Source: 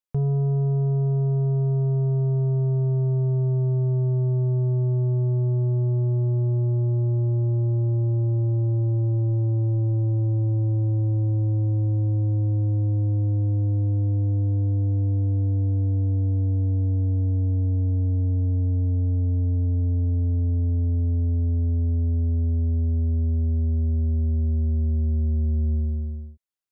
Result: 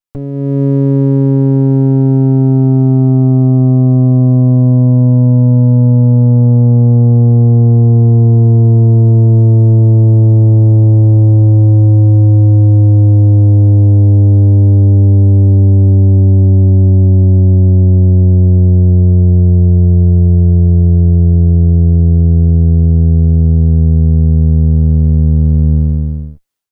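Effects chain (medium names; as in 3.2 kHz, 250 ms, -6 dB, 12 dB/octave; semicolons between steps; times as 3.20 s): comb filter that takes the minimum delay 9.5 ms; level rider gain up to 13 dB; trim +3 dB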